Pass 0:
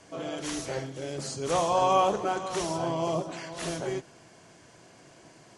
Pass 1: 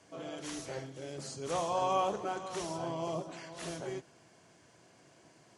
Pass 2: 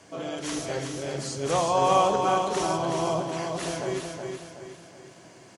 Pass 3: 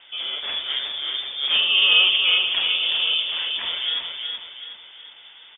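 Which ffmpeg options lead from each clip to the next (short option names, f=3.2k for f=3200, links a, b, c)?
-af "highpass=54,volume=-7.5dB"
-af "aecho=1:1:372|744|1116|1488|1860:0.562|0.236|0.0992|0.0417|0.0175,volume=9dB"
-af "lowpass=f=3.1k:t=q:w=0.5098,lowpass=f=3.1k:t=q:w=0.6013,lowpass=f=3.1k:t=q:w=0.9,lowpass=f=3.1k:t=q:w=2.563,afreqshift=-3700,volume=4.5dB"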